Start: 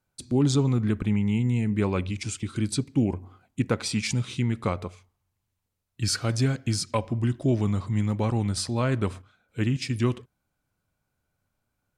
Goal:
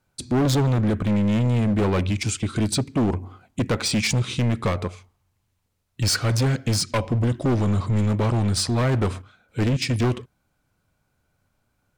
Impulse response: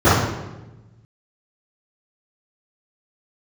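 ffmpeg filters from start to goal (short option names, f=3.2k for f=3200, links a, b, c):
-af "highshelf=f=9.4k:g=-5,asoftclip=type=hard:threshold=-25.5dB,volume=8dB"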